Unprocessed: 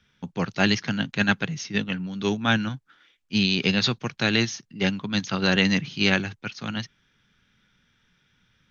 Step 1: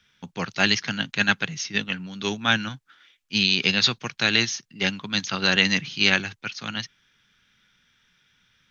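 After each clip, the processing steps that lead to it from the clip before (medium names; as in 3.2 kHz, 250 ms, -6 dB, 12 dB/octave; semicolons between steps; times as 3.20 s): tilt shelf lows -5 dB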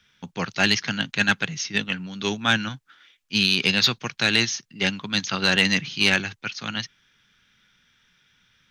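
saturation -7.5 dBFS, distortion -19 dB; trim +1.5 dB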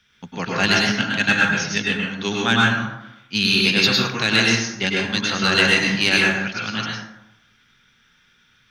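plate-style reverb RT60 0.87 s, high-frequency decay 0.45×, pre-delay 90 ms, DRR -3.5 dB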